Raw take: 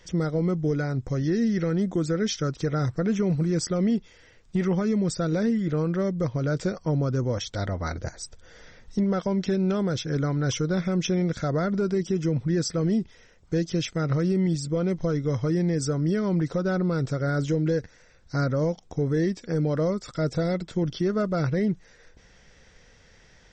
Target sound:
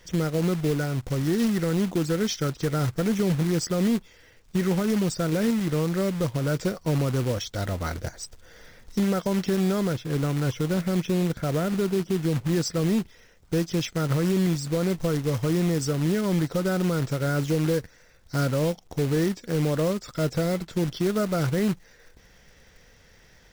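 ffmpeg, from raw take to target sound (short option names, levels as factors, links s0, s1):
-filter_complex "[0:a]asettb=1/sr,asplit=3[s0][s1][s2];[s0]atrim=end=9.924[s3];[s1]atrim=start=9.92:end=12.53,asetpts=PTS-STARTPTS,afade=t=in:d=0.004:c=qsin,afade=t=out:st=2.606:d=0.004:c=qsin,lowpass=f=1200:p=1[s4];[s2]atrim=start=12.526[s5];[s3][s4]acrossfade=d=0.004:c1=hsin:c2=qsin[s6];[s6][s5]acrossfade=d=0.004:c1=qsin:c2=hsin,acrusher=bits=3:mode=log:mix=0:aa=0.000001"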